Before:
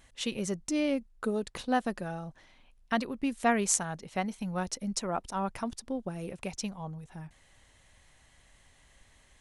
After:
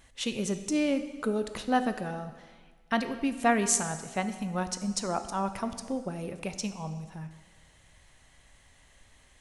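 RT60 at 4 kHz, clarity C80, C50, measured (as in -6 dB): 1.4 s, 12.0 dB, 11.0 dB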